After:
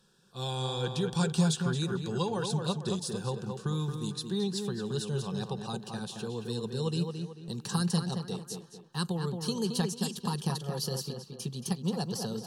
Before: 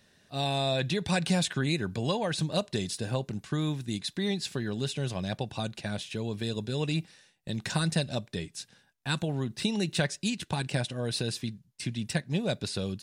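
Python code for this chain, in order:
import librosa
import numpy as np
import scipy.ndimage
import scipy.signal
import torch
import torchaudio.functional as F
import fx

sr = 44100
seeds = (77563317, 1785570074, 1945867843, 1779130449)

p1 = fx.speed_glide(x, sr, from_pct=93, to_pct=116)
p2 = fx.fixed_phaser(p1, sr, hz=420.0, stages=8)
y = p2 + fx.echo_tape(p2, sr, ms=223, feedback_pct=43, wet_db=-4.0, lp_hz=2500.0, drive_db=18.0, wow_cents=23, dry=0)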